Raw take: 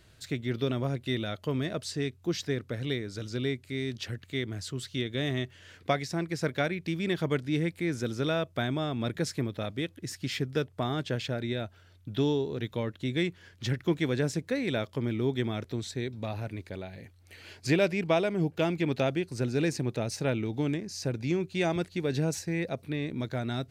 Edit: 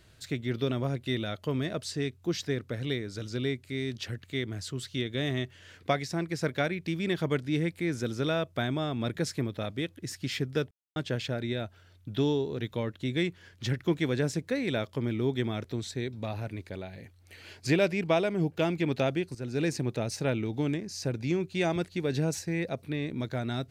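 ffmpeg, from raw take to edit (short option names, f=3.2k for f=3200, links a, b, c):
-filter_complex "[0:a]asplit=4[a][b][c][d];[a]atrim=end=10.71,asetpts=PTS-STARTPTS,afade=t=out:st=10.706:d=0.004:c=hsin[e];[b]atrim=start=10.71:end=10.96,asetpts=PTS-STARTPTS,volume=0[f];[c]atrim=start=10.96:end=19.35,asetpts=PTS-STARTPTS,afade=t=in:d=0.004:c=hsin,afade=t=out:st=8.386:d=0.004:c=hsin:silence=0.211349[g];[d]atrim=start=19.35,asetpts=PTS-STARTPTS,afade=t=in:d=0.43:c=qsin:silence=0.211349[h];[e][f][g][h]concat=n=4:v=0:a=1"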